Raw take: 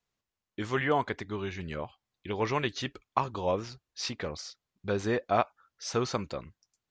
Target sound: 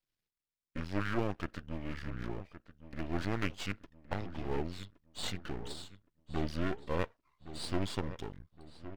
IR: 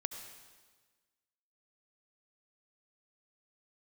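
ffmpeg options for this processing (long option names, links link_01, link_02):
-filter_complex "[0:a]asetrate=33957,aresample=44100,equalizer=frequency=790:width_type=o:width=1.1:gain=-11,aeval=exprs='max(val(0),0)':channel_layout=same,asplit=2[link_01][link_02];[link_02]adelay=1117,lowpass=frequency=2300:poles=1,volume=-13dB,asplit=2[link_03][link_04];[link_04]adelay=1117,lowpass=frequency=2300:poles=1,volume=0.43,asplit=2[link_05][link_06];[link_06]adelay=1117,lowpass=frequency=2300:poles=1,volume=0.43,asplit=2[link_07][link_08];[link_08]adelay=1117,lowpass=frequency=2300:poles=1,volume=0.43[link_09];[link_03][link_05][link_07][link_09]amix=inputs=4:normalize=0[link_10];[link_01][link_10]amix=inputs=2:normalize=0"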